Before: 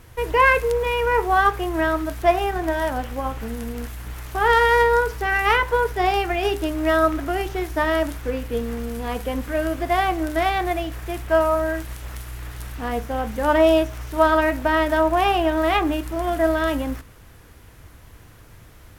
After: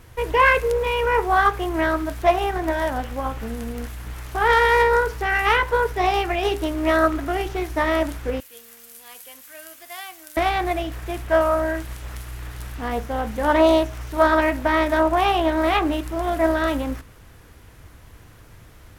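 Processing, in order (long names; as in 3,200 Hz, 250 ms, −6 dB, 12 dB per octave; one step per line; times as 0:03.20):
0:08.40–0:10.37: first difference
highs frequency-modulated by the lows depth 0.2 ms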